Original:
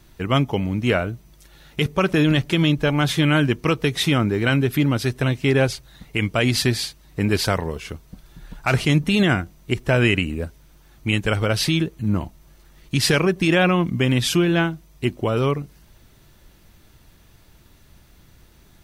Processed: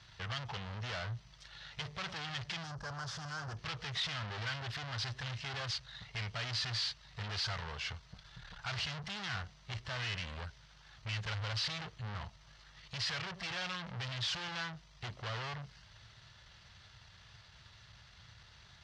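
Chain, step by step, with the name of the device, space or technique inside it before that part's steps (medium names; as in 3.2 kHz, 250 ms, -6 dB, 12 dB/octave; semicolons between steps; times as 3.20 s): scooped metal amplifier (valve stage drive 36 dB, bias 0.5; cabinet simulation 97–4600 Hz, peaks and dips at 110 Hz +6 dB, 2.4 kHz -6 dB, 3.6 kHz -3 dB; amplifier tone stack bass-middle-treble 10-0-10); 2.63–3.57 s: high-order bell 2.8 kHz -14 dB 1.3 oct; trim +9 dB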